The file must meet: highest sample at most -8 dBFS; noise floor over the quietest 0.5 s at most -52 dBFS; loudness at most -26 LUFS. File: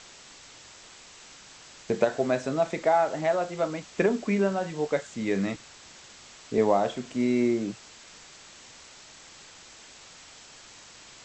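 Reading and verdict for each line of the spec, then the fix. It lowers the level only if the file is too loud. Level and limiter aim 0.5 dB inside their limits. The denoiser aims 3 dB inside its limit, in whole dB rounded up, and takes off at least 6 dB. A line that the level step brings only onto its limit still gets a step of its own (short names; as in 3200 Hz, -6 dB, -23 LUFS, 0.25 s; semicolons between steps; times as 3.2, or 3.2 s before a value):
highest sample -9.5 dBFS: OK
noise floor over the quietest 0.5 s -50 dBFS: fail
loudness -27.0 LUFS: OK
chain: denoiser 6 dB, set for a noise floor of -50 dBFS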